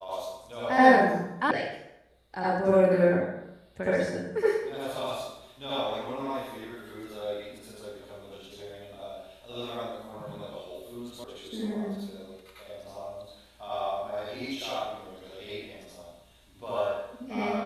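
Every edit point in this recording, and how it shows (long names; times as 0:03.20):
0:01.51: cut off before it has died away
0:11.24: cut off before it has died away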